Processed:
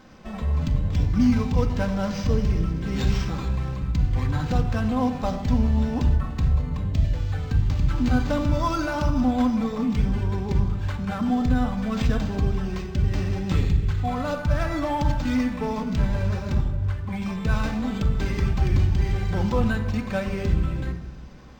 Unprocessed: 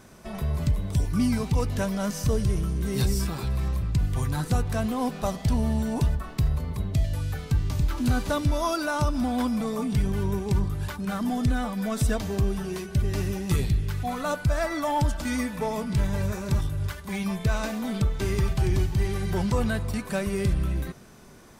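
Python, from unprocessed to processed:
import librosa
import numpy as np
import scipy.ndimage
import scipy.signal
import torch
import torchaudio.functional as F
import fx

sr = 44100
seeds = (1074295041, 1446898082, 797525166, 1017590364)

y = fx.high_shelf(x, sr, hz=2200.0, db=-9.5, at=(16.54, 17.22))
y = fx.room_shoebox(y, sr, seeds[0], volume_m3=3300.0, walls='furnished', distance_m=2.1)
y = np.interp(np.arange(len(y)), np.arange(len(y))[::4], y[::4])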